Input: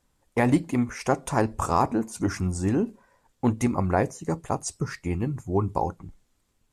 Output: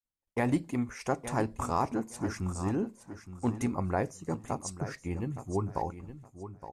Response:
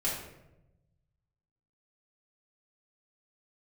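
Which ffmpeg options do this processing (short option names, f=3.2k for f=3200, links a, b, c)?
-af "agate=range=-33dB:threshold=-54dB:ratio=3:detection=peak,aecho=1:1:867|1734|2601:0.251|0.0527|0.0111,volume=-7dB"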